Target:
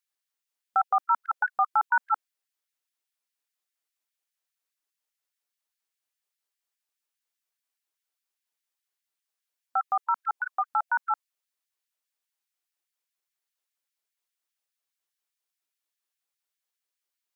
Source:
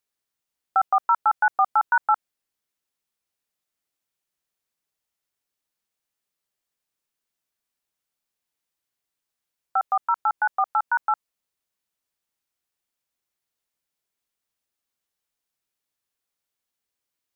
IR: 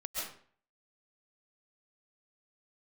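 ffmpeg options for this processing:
-af "equalizer=frequency=130:width=0.31:gain=-5,afftfilt=real='re*gte(b*sr/1024,220*pow(1600/220,0.5+0.5*sin(2*PI*4.9*pts/sr)))':imag='im*gte(b*sr/1024,220*pow(1600/220,0.5+0.5*sin(2*PI*4.9*pts/sr)))':win_size=1024:overlap=0.75,volume=-2.5dB"

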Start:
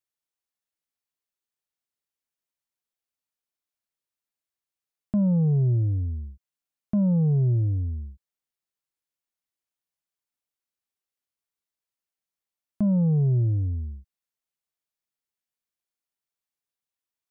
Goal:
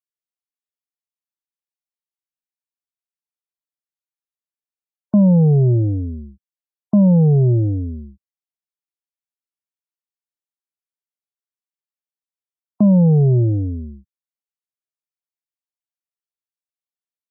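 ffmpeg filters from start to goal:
ffmpeg -i in.wav -filter_complex "[0:a]afftdn=noise_reduction=26:noise_floor=-47,highpass=190,asplit=2[link_01][link_02];[link_02]alimiter=level_in=1.5dB:limit=-24dB:level=0:latency=1,volume=-1.5dB,volume=2dB[link_03];[link_01][link_03]amix=inputs=2:normalize=0,volume=8.5dB" out.wav

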